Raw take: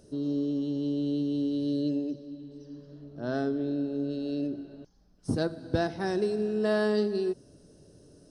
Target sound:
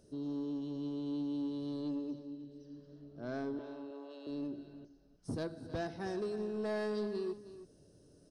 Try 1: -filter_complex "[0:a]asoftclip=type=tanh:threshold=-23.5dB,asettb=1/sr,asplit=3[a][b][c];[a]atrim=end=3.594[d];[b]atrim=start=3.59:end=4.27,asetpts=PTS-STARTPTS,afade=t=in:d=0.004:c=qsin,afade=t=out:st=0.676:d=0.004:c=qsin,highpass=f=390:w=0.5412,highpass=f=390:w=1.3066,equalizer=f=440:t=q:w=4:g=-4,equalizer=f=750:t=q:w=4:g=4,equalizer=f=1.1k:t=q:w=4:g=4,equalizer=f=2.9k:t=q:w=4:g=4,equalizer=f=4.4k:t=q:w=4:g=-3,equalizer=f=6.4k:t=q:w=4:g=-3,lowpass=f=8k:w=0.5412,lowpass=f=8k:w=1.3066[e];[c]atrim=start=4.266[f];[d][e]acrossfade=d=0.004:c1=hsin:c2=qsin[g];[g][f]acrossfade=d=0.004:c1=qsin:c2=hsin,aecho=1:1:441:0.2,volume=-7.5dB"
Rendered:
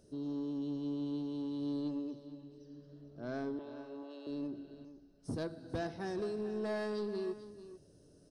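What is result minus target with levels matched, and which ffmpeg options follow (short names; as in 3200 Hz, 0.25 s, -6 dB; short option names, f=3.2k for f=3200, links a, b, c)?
echo 0.124 s late
-filter_complex "[0:a]asoftclip=type=tanh:threshold=-23.5dB,asettb=1/sr,asplit=3[a][b][c];[a]atrim=end=3.594[d];[b]atrim=start=3.59:end=4.27,asetpts=PTS-STARTPTS,afade=t=in:d=0.004:c=qsin,afade=t=out:st=0.676:d=0.004:c=qsin,highpass=f=390:w=0.5412,highpass=f=390:w=1.3066,equalizer=f=440:t=q:w=4:g=-4,equalizer=f=750:t=q:w=4:g=4,equalizer=f=1.1k:t=q:w=4:g=4,equalizer=f=2.9k:t=q:w=4:g=4,equalizer=f=4.4k:t=q:w=4:g=-3,equalizer=f=6.4k:t=q:w=4:g=-3,lowpass=f=8k:w=0.5412,lowpass=f=8k:w=1.3066[e];[c]atrim=start=4.266[f];[d][e]acrossfade=d=0.004:c1=hsin:c2=qsin[g];[g][f]acrossfade=d=0.004:c1=qsin:c2=hsin,aecho=1:1:317:0.2,volume=-7.5dB"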